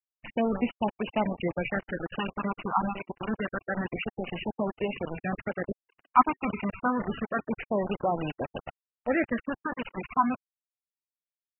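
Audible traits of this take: a buzz of ramps at a fixed pitch in blocks of 8 samples; phasing stages 12, 0.27 Hz, lowest notch 550–1500 Hz; a quantiser's noise floor 6-bit, dither none; MP3

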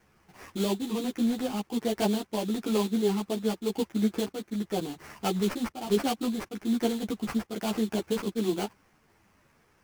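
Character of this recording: aliases and images of a low sample rate 3.8 kHz, jitter 20%; a shimmering, thickened sound

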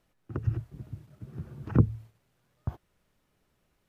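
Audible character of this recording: noise floor -74 dBFS; spectral tilt -10.0 dB/octave

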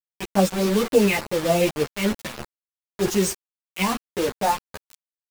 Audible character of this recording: phasing stages 2, 3.4 Hz, lowest notch 700–2000 Hz; a quantiser's noise floor 6-bit, dither none; a shimmering, thickened sound

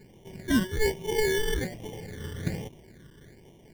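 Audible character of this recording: a quantiser's noise floor 10-bit, dither none; tremolo saw up 0.6 Hz, depth 35%; aliases and images of a low sample rate 1.3 kHz, jitter 0%; phasing stages 12, 1.2 Hz, lowest notch 740–1500 Hz

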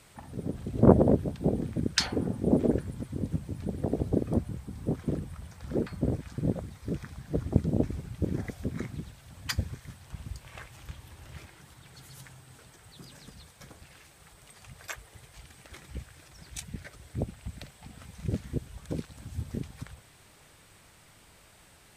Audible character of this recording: noise floor -57 dBFS; spectral tilt -6.5 dB/octave

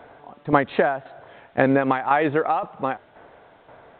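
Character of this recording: tremolo saw down 1.9 Hz, depth 65%; a quantiser's noise floor 10-bit, dither none; µ-law

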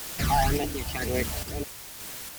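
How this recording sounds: phasing stages 12, 2 Hz, lowest notch 380–1500 Hz; a quantiser's noise floor 6-bit, dither triangular; random-step tremolo; AAC

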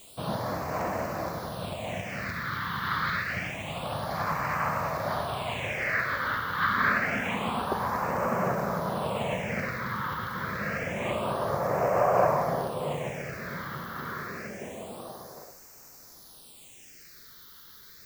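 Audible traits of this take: a quantiser's noise floor 8-bit, dither triangular; phasing stages 6, 0.27 Hz, lowest notch 650–3300 Hz

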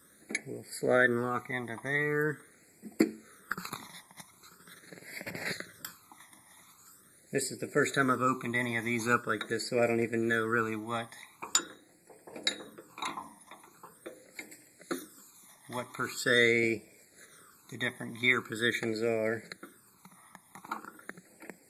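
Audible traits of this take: phasing stages 12, 0.43 Hz, lowest notch 460–1200 Hz

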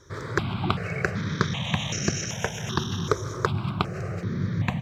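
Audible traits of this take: notches that jump at a steady rate 2.6 Hz 750–3500 Hz

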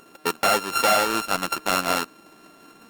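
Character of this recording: a buzz of ramps at a fixed pitch in blocks of 32 samples; Opus

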